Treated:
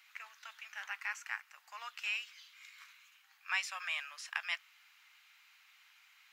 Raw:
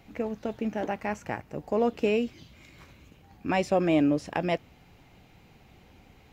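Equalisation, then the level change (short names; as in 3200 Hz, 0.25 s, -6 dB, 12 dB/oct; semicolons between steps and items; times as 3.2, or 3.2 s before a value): steep high-pass 1200 Hz 36 dB/oct; 0.0 dB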